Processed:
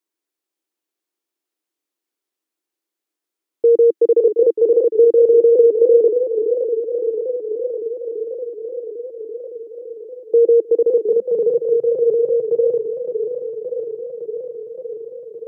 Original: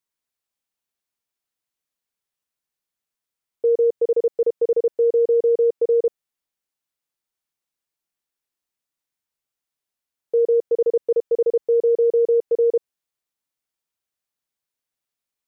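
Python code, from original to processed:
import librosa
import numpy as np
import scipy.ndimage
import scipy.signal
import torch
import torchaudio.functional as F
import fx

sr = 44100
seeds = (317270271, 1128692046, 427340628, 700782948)

y = fx.filter_sweep_highpass(x, sr, from_hz=330.0, to_hz=130.0, start_s=10.65, end_s=11.81, q=5.9)
y = fx.echo_warbled(y, sr, ms=566, feedback_pct=76, rate_hz=2.8, cents=165, wet_db=-9.0)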